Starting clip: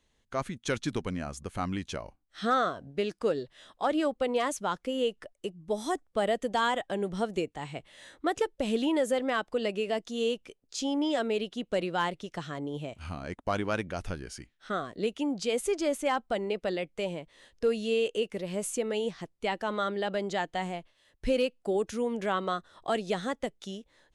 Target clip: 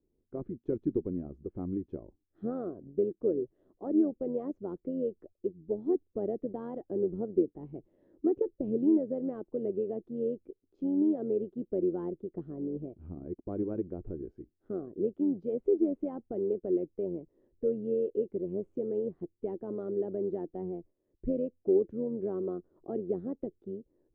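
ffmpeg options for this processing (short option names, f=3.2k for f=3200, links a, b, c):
-af "lowpass=f=360:t=q:w=4.5,tremolo=f=91:d=0.462,volume=-4dB"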